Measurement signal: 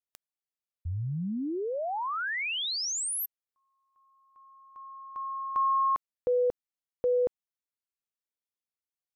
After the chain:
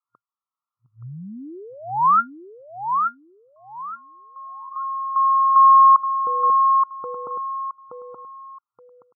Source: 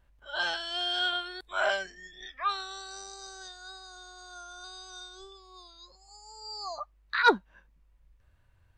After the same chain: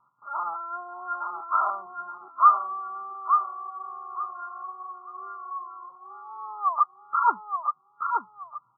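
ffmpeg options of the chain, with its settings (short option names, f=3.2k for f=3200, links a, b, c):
-af "crystalizer=i=6.5:c=0,lowshelf=f=790:t=q:w=3:g=-10.5,acompressor=threshold=-20dB:ratio=2:attack=0.38:release=698:knee=1:detection=rms,afftfilt=real='re*between(b*sr/4096,110,1400)':imag='im*between(b*sr/4096,110,1400)':win_size=4096:overlap=0.75,aecho=1:1:874|1748|2622:0.562|0.146|0.038,volume=8dB"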